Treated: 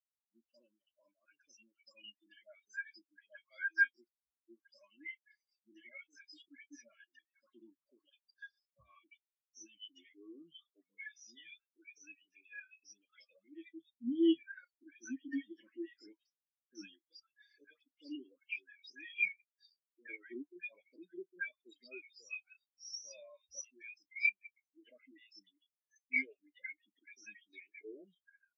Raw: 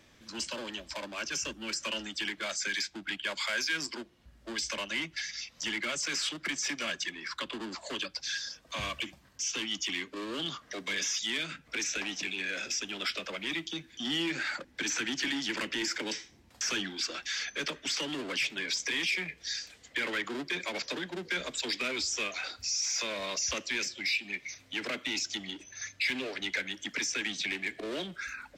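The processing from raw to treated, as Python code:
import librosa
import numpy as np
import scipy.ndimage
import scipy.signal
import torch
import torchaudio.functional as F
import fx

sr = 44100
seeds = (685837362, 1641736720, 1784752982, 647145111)

y = fx.doubler(x, sr, ms=34.0, db=-12.0)
y = fx.dispersion(y, sr, late='highs', ms=149.0, hz=1300.0)
y = fx.spectral_expand(y, sr, expansion=4.0)
y = y * librosa.db_to_amplitude(-2.5)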